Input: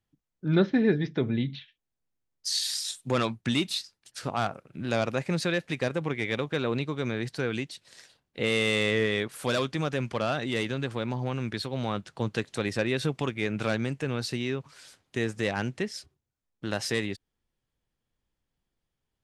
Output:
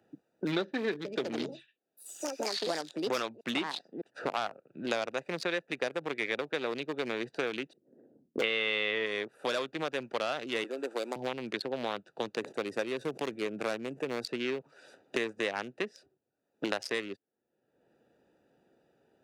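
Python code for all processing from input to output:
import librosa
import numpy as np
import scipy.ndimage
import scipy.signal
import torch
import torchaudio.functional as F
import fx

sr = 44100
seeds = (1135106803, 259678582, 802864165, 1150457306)

y = fx.chain(x, sr, fx.highpass(hz=63.0, slope=12),
    fx.high_shelf(hz=8400.0, db=-10.0),
    fx.echo_pitch(ms=138, semitones=5, count=3, db_per_echo=-6.0), at=(0.91, 4.87))
y = fx.chain(y, sr, fx.gate_hold(open_db=-56.0, close_db=-63.0, hold_ms=71.0, range_db=-21, attack_ms=1.4, release_ms=100.0),
    fx.envelope_lowpass(base_hz=230.0, top_hz=3300.0, q=2.3, full_db=-25.5, direction='up'), at=(7.73, 9.06))
y = fx.chain(y, sr, fx.delta_mod(bps=64000, step_db=-45.0),
    fx.highpass(hz=280.0, slope=24),
    fx.peak_eq(hz=7800.0, db=8.0, octaves=0.32), at=(10.64, 11.16))
y = fx.chain(y, sr, fx.peak_eq(hz=3300.0, db=-12.0, octaves=1.9),
    fx.sustainer(db_per_s=150.0), at=(12.36, 14.25))
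y = fx.wiener(y, sr, points=41)
y = scipy.signal.sosfilt(scipy.signal.butter(2, 450.0, 'highpass', fs=sr, output='sos'), y)
y = fx.band_squash(y, sr, depth_pct=100)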